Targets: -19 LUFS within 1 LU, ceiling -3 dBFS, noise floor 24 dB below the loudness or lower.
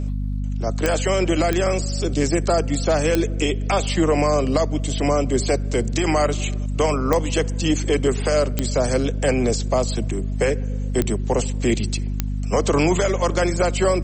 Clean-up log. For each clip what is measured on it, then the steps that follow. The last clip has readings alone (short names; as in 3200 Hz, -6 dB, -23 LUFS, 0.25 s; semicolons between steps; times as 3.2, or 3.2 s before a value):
clicks 7; hum 50 Hz; harmonics up to 250 Hz; hum level -22 dBFS; loudness -21.5 LUFS; peak -4.5 dBFS; loudness target -19.0 LUFS
-> de-click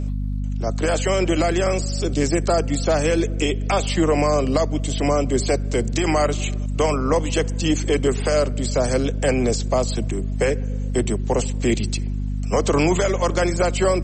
clicks 0; hum 50 Hz; harmonics up to 250 Hz; hum level -22 dBFS
-> notches 50/100/150/200/250 Hz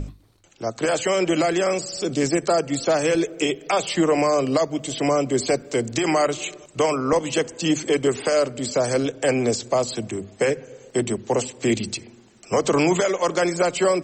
hum none; loudness -22.5 LUFS; peak -7.5 dBFS; loudness target -19.0 LUFS
-> gain +3.5 dB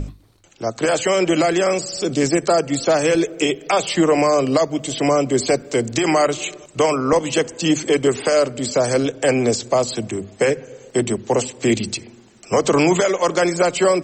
loudness -19.0 LUFS; peak -4.0 dBFS; noise floor -49 dBFS